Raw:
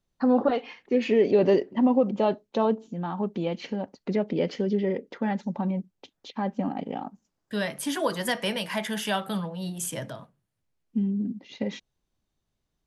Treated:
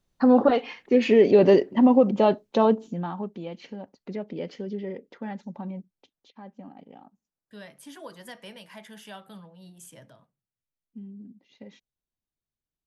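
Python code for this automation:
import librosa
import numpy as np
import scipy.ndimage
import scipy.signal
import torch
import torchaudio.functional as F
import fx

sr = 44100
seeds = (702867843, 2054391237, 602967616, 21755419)

y = fx.gain(x, sr, db=fx.line((2.89, 4.0), (3.37, -7.5), (5.78, -7.5), (6.38, -15.5)))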